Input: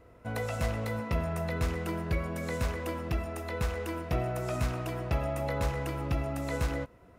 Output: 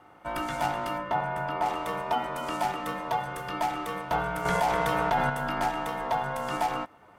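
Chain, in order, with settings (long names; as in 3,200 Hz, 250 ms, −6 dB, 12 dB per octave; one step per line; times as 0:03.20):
0:00.98–0:01.66: high-shelf EQ 2,300 Hz −10.5 dB
ring modulation 800 Hz
0:04.45–0:05.30: envelope flattener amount 70%
level +4.5 dB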